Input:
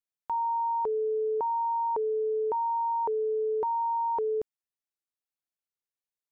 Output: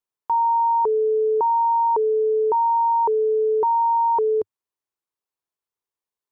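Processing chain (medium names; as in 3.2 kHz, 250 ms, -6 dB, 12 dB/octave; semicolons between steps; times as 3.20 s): fifteen-band graphic EQ 100 Hz +5 dB, 400 Hz +9 dB, 1 kHz +10 dB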